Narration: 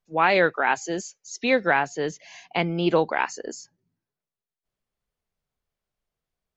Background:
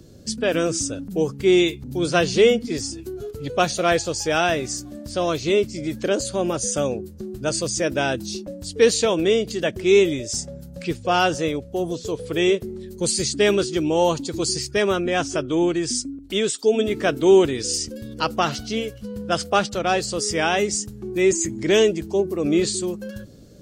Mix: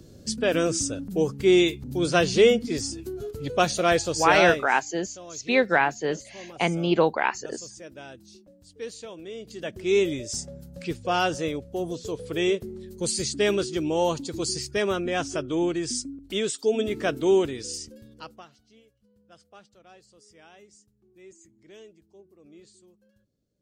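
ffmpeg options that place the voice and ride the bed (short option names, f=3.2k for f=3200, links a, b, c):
-filter_complex "[0:a]adelay=4050,volume=0dB[a];[1:a]volume=13.5dB,afade=t=out:st=4.47:d=0.2:silence=0.11885,afade=t=in:st=9.32:d=0.78:silence=0.16788,afade=t=out:st=17.1:d=1.38:silence=0.0473151[b];[a][b]amix=inputs=2:normalize=0"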